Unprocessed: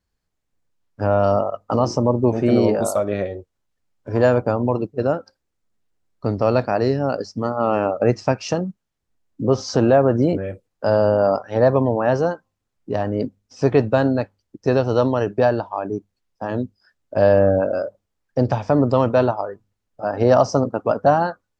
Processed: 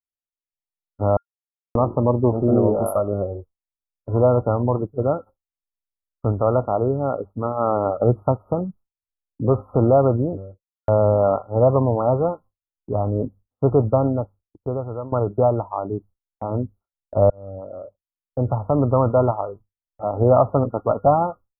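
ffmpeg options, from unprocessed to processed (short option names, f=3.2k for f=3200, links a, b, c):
-filter_complex "[0:a]asettb=1/sr,asplit=3[a][b][c];[a]atrim=end=6.324[d];[b]atrim=start=6.32:end=7.87,asetpts=PTS-STARTPTS,afade=t=in:d=0.004:c=qsin,afade=t=out:st=1.546:d=0.004:c=qsin,bass=f=250:g=-3,treble=f=4k:g=-4[e];[c]atrim=start=7.866[f];[d][e]acrossfade=d=0.004:c1=hsin:c2=qsin[g];[g][f]acrossfade=d=0.004:c1=qsin:c2=hsin,asplit=6[h][i][j][k][l][m];[h]atrim=end=1.17,asetpts=PTS-STARTPTS,afade=t=out:st=1.166:d=0.004:c=hsin[n];[i]atrim=start=1.17:end=1.75,asetpts=PTS-STARTPTS,volume=0[o];[j]atrim=start=1.75:end=10.88,asetpts=PTS-STARTPTS,afade=t=in:d=0.004:c=hsin,afade=t=out:st=8.33:d=0.8:c=qua[p];[k]atrim=start=10.88:end=15.12,asetpts=PTS-STARTPTS,afade=t=in:d=0.004:c=hsin,afade=t=out:st=3.07:d=1.17:silence=0.158489[q];[l]atrim=start=15.12:end=17.3,asetpts=PTS-STARTPTS,afade=t=in:d=0.004:c=hsin:silence=0.158489,afade=t=out:st=2.176:d=0.004:c=hsin[r];[m]atrim=start=17.3,asetpts=PTS-STARTPTS,afade=t=in:d=1.71[s];[n][o][p][q][r][s]concat=n=6:v=0:a=1,afftfilt=real='re*(1-between(b*sr/4096,1400,10000))':imag='im*(1-between(b*sr/4096,1400,10000))':win_size=4096:overlap=0.75,agate=range=-33dB:threshold=-37dB:ratio=3:detection=peak,asubboost=boost=3.5:cutoff=100"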